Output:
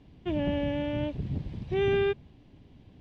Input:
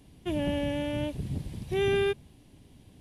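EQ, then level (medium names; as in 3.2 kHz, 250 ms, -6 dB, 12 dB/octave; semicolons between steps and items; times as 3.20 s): distance through air 200 m; +1.0 dB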